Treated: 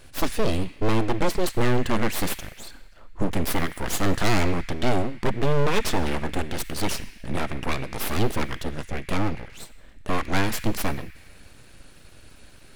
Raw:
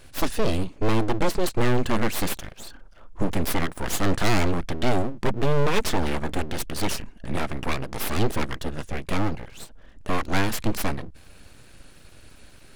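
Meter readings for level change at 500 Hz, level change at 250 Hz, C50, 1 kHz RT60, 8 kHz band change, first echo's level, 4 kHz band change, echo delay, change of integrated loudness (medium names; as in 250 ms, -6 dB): 0.0 dB, 0.0 dB, 12.0 dB, 1.5 s, 0.0 dB, no echo, 0.0 dB, no echo, 0.0 dB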